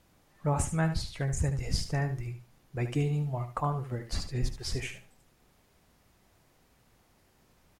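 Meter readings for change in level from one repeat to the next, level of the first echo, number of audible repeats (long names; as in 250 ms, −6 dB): −14.0 dB, −10.0 dB, 2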